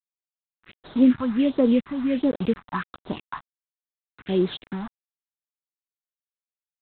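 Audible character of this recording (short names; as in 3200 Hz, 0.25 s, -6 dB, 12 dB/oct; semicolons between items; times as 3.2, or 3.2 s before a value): a quantiser's noise floor 6-bit, dither none; phasing stages 4, 1.4 Hz, lowest notch 420–2600 Hz; G.726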